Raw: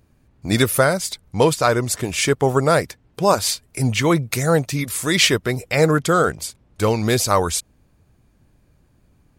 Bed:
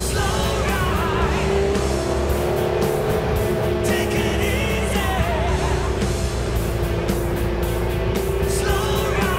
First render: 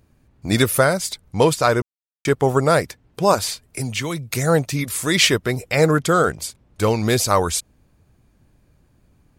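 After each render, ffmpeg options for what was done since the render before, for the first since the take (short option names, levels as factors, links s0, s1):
-filter_complex "[0:a]asettb=1/sr,asplit=3[s0][s1][s2];[s0]atrim=end=3.444[s3];[s1]atrim=start=3.44:end=4.35,asetpts=PTS-STARTPTS,afade=t=in:d=0.004:c=qsin,afade=t=out:st=0.906:d=0.004:c=qsin,acrossover=split=140|2700[s4][s5][s6];[s4]acompressor=threshold=0.0224:ratio=4[s7];[s5]acompressor=threshold=0.0447:ratio=4[s8];[s6]acompressor=threshold=0.0562:ratio=4[s9];[s7][s8][s9]amix=inputs=3:normalize=0[s10];[s2]atrim=start=4.346[s11];[s3][s10]acrossfade=d=0.004:c1=hsin:c2=qsin[s12];[s12][s11]acrossfade=d=0.004:c1=qsin:c2=hsin,asplit=3[s13][s14][s15];[s13]atrim=end=1.82,asetpts=PTS-STARTPTS,afade=t=out:st=1.816:d=0.004:c=hsin[s16];[s14]atrim=start=1.82:end=2.25,asetpts=PTS-STARTPTS,volume=0[s17];[s15]atrim=start=2.25,asetpts=PTS-STARTPTS,afade=t=in:d=0.004:c=hsin[s18];[s16][s17][s18]concat=n=3:v=0:a=1"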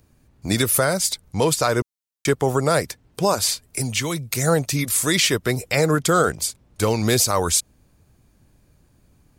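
-filter_complex "[0:a]acrossover=split=350|1600|4200[s0][s1][s2][s3];[s3]acontrast=41[s4];[s0][s1][s2][s4]amix=inputs=4:normalize=0,alimiter=limit=0.422:level=0:latency=1:release=128"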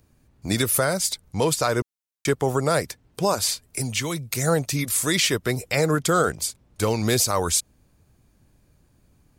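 -af "volume=0.75"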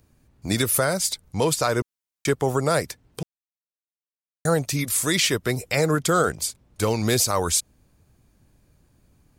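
-filter_complex "[0:a]asplit=3[s0][s1][s2];[s0]atrim=end=3.23,asetpts=PTS-STARTPTS,afade=t=out:st=3.226:d=0.004:c=hsin[s3];[s1]atrim=start=3.23:end=4.45,asetpts=PTS-STARTPTS,volume=0[s4];[s2]atrim=start=4.45,asetpts=PTS-STARTPTS,afade=t=in:d=0.004:c=hsin[s5];[s3][s4][s5]concat=n=3:v=0:a=1"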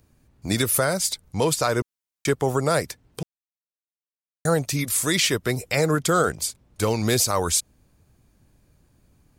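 -af anull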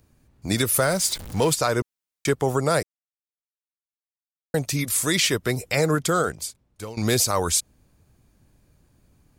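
-filter_complex "[0:a]asettb=1/sr,asplit=3[s0][s1][s2];[s0]atrim=end=0.794[s3];[s1]atrim=start=0.79:end=1.55,asetpts=PTS-STARTPTS,afade=t=in:d=0.004:c=qsin,afade=t=out:st=0.756:d=0.004:c=qsin,aeval=exprs='val(0)+0.5*0.0251*sgn(val(0))':c=same[s4];[s2]atrim=start=1.546[s5];[s3][s4]acrossfade=d=0.004:c1=hsin:c2=qsin[s6];[s6][s5]acrossfade=d=0.004:c1=qsin:c2=hsin,asplit=4[s7][s8][s9][s10];[s7]atrim=end=2.83,asetpts=PTS-STARTPTS,afade=t=out:st=2.826:d=0.004:c=hsin[s11];[s8]atrim=start=2.83:end=4.54,asetpts=PTS-STARTPTS,volume=0[s12];[s9]atrim=start=4.54:end=6.97,asetpts=PTS-STARTPTS,afade=t=in:d=0.004:c=hsin,afade=t=out:st=1.39:d=1.04:silence=0.141254[s13];[s10]atrim=start=6.97,asetpts=PTS-STARTPTS,afade=t=in:d=0.004:c=hsin:silence=0.141254[s14];[s11][s12][s13][s14]concat=n=4:v=0:a=1"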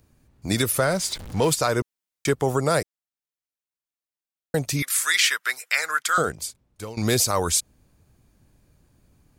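-filter_complex "[0:a]asettb=1/sr,asplit=3[s0][s1][s2];[s0]atrim=end=0.724[s3];[s1]atrim=start=0.72:end=1.44,asetpts=PTS-STARTPTS,afade=t=in:d=0.004:c=qsin,afade=t=out:st=0.716:d=0.004:c=qsin,highshelf=f=7900:g=-10[s4];[s2]atrim=start=1.436[s5];[s3][s4]acrossfade=d=0.004:c1=hsin:c2=qsin[s6];[s6][s5]acrossfade=d=0.004:c1=qsin:c2=hsin,asettb=1/sr,asplit=3[s7][s8][s9];[s7]atrim=end=4.824[s10];[s8]atrim=start=4.82:end=6.18,asetpts=PTS-STARTPTS,afade=t=in:d=0.004:c=qsin,afade=t=out:st=1.356:d=0.004:c=qsin,highpass=f=1500:t=q:w=2.4[s11];[s9]atrim=start=6.176[s12];[s10][s11]acrossfade=d=0.004:c1=hsin:c2=qsin[s13];[s13][s12]acrossfade=d=0.004:c1=qsin:c2=hsin"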